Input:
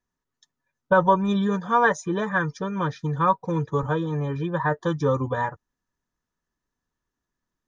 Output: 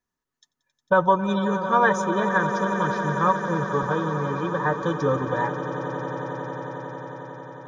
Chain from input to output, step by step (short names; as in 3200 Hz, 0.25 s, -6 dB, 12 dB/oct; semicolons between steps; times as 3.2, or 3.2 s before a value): low shelf 160 Hz -5.5 dB; swelling echo 90 ms, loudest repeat 8, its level -15 dB